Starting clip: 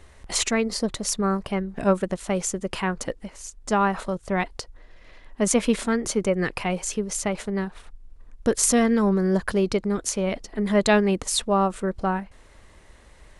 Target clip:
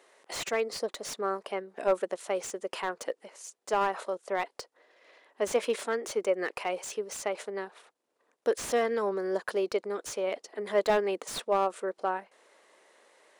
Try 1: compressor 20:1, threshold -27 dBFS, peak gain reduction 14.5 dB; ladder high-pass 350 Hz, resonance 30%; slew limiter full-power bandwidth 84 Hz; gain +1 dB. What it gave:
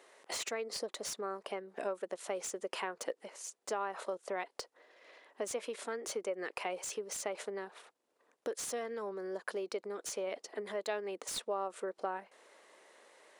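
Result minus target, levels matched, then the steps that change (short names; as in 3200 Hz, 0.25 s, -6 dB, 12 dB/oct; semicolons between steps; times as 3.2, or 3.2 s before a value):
compressor: peak gain reduction +14.5 dB
remove: compressor 20:1, threshold -27 dBFS, peak gain reduction 14.5 dB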